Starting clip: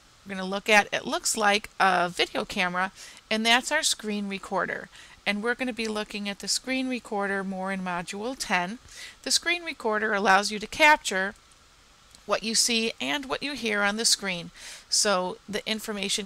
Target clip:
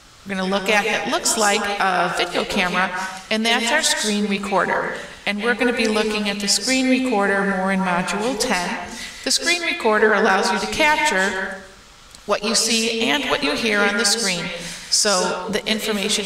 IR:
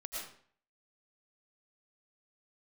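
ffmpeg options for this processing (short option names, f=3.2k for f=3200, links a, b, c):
-filter_complex "[0:a]alimiter=limit=-15.5dB:level=0:latency=1:release=363,asplit=2[a][b];[1:a]atrim=start_sample=2205,asetrate=32193,aresample=44100[c];[b][c]afir=irnorm=-1:irlink=0,volume=-1.5dB[d];[a][d]amix=inputs=2:normalize=0,volume=5.5dB"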